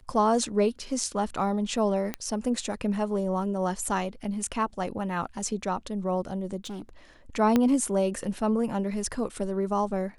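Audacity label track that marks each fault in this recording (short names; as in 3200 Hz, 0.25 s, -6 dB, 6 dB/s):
2.140000	2.140000	pop -15 dBFS
6.640000	6.890000	clipped -33.5 dBFS
7.560000	7.560000	pop -10 dBFS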